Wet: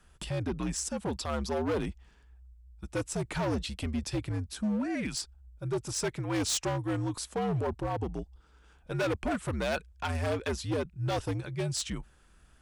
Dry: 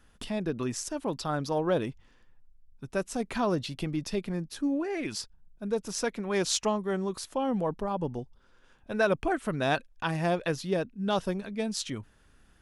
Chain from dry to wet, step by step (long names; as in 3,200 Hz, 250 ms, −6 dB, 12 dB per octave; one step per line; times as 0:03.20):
frequency shifter −72 Hz
parametric band 7,900 Hz +6.5 dB 0.25 octaves
gain into a clipping stage and back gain 26 dB